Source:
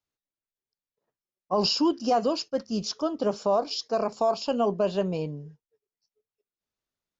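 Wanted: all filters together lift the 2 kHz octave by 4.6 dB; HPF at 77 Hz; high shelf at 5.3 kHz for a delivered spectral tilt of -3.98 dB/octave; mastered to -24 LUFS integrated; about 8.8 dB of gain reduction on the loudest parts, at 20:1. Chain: high-pass 77 Hz; peaking EQ 2 kHz +8 dB; treble shelf 5.3 kHz -5.5 dB; compression 20:1, threshold -27 dBFS; trim +9 dB

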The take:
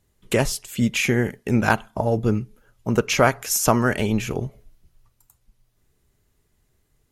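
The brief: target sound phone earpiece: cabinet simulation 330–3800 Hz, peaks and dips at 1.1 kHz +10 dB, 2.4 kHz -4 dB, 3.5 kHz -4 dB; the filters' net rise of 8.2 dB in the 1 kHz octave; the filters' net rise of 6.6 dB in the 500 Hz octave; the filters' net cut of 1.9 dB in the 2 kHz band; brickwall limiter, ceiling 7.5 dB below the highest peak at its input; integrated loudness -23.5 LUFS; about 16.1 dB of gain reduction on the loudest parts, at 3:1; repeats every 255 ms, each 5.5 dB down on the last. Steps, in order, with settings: peaking EQ 500 Hz +8 dB; peaking EQ 1 kHz +4 dB; peaking EQ 2 kHz -5 dB; compression 3:1, threshold -30 dBFS; peak limiter -20.5 dBFS; cabinet simulation 330–3800 Hz, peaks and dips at 1.1 kHz +10 dB, 2.4 kHz -4 dB, 3.5 kHz -4 dB; feedback delay 255 ms, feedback 53%, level -5.5 dB; trim +11 dB

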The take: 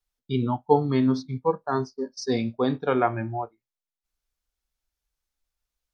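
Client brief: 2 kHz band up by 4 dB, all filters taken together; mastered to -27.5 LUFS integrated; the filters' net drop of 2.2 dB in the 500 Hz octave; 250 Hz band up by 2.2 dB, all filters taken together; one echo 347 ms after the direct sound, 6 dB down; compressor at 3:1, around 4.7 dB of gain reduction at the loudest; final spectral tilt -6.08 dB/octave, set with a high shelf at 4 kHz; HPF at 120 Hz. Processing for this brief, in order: high-pass 120 Hz; peaking EQ 250 Hz +3.5 dB; peaking EQ 500 Hz -4 dB; peaking EQ 2 kHz +7 dB; treble shelf 4 kHz -6.5 dB; compression 3:1, threshold -21 dBFS; delay 347 ms -6 dB; trim -0.5 dB

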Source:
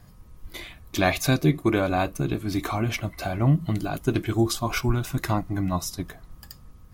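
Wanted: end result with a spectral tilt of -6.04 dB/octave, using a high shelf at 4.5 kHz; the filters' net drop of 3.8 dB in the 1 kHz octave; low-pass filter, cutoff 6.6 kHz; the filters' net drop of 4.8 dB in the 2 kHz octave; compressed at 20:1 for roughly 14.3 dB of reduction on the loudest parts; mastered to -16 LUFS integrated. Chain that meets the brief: low-pass 6.6 kHz; peaking EQ 1 kHz -4.5 dB; peaking EQ 2 kHz -3 dB; treble shelf 4.5 kHz -8.5 dB; compression 20:1, threshold -30 dBFS; trim +20.5 dB

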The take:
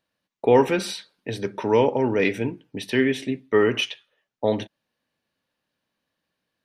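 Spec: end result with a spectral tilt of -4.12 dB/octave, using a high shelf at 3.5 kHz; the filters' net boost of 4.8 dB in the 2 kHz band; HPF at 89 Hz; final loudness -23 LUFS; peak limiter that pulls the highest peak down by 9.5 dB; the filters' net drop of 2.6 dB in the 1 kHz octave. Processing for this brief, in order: high-pass 89 Hz; peaking EQ 1 kHz -4.5 dB; peaking EQ 2 kHz +5 dB; treble shelf 3.5 kHz +5.5 dB; trim +3.5 dB; peak limiter -11 dBFS

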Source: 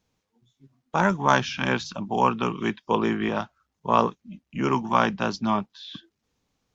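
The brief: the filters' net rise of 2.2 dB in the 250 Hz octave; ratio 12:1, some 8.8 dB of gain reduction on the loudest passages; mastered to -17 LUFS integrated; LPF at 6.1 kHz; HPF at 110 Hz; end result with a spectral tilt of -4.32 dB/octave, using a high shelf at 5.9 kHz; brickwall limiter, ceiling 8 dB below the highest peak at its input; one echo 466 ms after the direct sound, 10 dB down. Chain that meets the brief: high-pass 110 Hz; low-pass 6.1 kHz; peaking EQ 250 Hz +3 dB; treble shelf 5.9 kHz +5 dB; compression 12:1, threshold -22 dBFS; peak limiter -17.5 dBFS; delay 466 ms -10 dB; trim +14 dB

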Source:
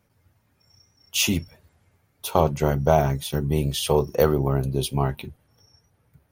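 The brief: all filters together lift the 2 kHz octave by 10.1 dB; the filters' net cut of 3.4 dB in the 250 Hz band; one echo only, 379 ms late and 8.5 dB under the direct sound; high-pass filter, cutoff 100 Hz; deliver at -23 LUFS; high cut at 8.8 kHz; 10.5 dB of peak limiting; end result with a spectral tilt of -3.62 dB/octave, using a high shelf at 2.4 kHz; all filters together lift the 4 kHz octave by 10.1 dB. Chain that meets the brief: high-pass 100 Hz; low-pass 8.8 kHz; peaking EQ 250 Hz -5.5 dB; peaking EQ 2 kHz +9 dB; treble shelf 2.4 kHz +5.5 dB; peaking EQ 4 kHz +5 dB; peak limiter -10 dBFS; delay 379 ms -8.5 dB; trim +0.5 dB

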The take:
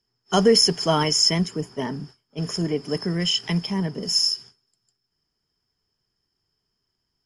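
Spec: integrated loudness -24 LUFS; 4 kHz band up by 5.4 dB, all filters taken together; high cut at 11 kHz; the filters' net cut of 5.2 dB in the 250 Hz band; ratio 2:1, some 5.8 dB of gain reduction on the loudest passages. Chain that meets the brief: low-pass 11 kHz; peaking EQ 250 Hz -8.5 dB; peaking EQ 4 kHz +9 dB; compression 2:1, threshold -19 dBFS; trim -2.5 dB

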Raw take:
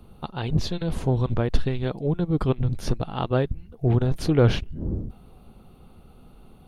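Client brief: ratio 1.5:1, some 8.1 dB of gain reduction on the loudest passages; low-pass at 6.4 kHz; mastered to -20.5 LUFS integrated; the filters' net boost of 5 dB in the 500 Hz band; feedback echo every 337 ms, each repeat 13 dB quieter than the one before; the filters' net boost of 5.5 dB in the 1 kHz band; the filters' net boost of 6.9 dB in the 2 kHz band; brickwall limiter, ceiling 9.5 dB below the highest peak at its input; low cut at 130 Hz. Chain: high-pass 130 Hz; low-pass 6.4 kHz; peaking EQ 500 Hz +5 dB; peaking EQ 1 kHz +3.5 dB; peaking EQ 2 kHz +8 dB; compression 1.5:1, threshold -33 dBFS; peak limiter -20 dBFS; feedback delay 337 ms, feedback 22%, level -13 dB; trim +12 dB

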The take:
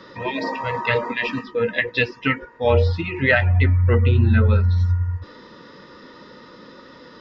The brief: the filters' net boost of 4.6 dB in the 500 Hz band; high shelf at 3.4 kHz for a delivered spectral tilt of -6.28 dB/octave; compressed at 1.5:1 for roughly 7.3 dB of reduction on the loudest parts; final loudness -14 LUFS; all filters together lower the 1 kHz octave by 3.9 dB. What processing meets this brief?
peaking EQ 500 Hz +6.5 dB; peaking EQ 1 kHz -6.5 dB; treble shelf 3.4 kHz -3.5 dB; compression 1.5:1, threshold -32 dBFS; trim +11.5 dB

